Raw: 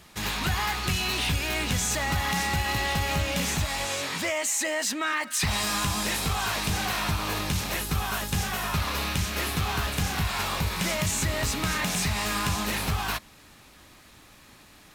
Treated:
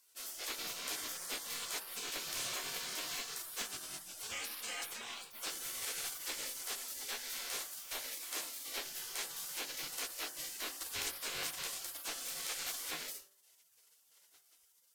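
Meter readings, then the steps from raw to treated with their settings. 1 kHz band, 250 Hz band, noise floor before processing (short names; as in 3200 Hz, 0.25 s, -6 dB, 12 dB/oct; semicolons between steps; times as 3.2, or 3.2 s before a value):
-19.5 dB, -25.5 dB, -53 dBFS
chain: resonator bank D#2 sus4, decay 0.27 s; spectral gate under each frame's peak -20 dB weak; de-hum 48.69 Hz, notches 38; gain +6.5 dB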